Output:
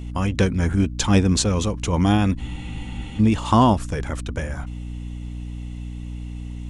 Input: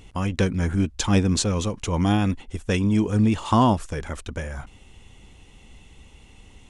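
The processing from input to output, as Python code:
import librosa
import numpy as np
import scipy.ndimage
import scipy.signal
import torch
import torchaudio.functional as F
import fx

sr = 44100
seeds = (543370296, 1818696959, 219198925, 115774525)

y = fx.add_hum(x, sr, base_hz=60, snr_db=10)
y = fx.spec_freeze(y, sr, seeds[0], at_s=2.41, hold_s=0.79)
y = y * librosa.db_to_amplitude(2.5)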